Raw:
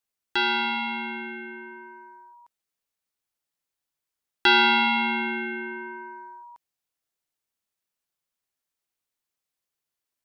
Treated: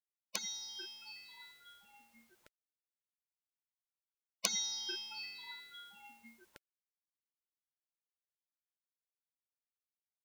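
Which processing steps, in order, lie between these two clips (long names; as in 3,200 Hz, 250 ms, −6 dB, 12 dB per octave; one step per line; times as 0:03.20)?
gate on every frequency bin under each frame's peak −30 dB weak
one half of a high-frequency compander decoder only
level +17.5 dB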